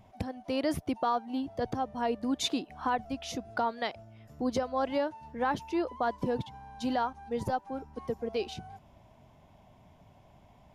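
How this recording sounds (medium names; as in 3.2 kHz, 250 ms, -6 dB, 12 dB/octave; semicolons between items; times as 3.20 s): noise floor -59 dBFS; spectral tilt -4.0 dB/octave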